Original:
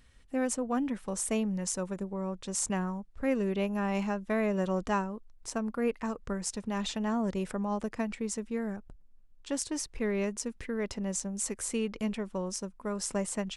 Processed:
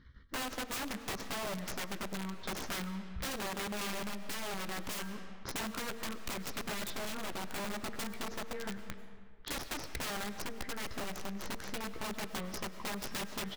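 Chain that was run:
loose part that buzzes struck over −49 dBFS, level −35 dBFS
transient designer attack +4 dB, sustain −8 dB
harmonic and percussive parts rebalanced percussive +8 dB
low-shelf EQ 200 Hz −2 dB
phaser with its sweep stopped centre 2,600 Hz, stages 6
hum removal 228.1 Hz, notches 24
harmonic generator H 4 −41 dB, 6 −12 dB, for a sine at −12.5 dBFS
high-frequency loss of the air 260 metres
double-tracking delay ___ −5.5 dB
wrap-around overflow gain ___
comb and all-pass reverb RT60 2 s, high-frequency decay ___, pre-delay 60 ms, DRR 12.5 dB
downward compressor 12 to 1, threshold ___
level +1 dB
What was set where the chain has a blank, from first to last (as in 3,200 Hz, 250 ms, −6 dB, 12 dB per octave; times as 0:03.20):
15 ms, 30 dB, 0.65×, −36 dBFS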